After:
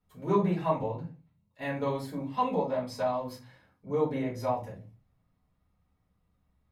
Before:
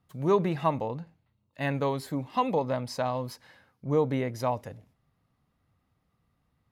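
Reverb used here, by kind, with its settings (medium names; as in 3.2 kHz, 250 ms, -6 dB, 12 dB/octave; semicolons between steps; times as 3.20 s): simulated room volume 120 m³, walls furnished, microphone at 4.5 m; trim -13.5 dB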